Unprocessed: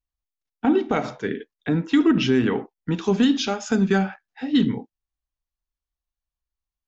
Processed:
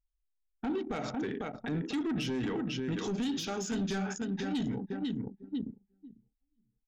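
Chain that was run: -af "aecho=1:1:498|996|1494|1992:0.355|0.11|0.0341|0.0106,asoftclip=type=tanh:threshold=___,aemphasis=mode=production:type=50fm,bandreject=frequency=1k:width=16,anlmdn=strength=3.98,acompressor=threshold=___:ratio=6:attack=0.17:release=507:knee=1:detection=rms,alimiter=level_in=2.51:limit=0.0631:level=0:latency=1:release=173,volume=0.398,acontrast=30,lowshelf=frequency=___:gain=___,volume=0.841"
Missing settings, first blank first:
0.168, 0.0708, 110, 5.5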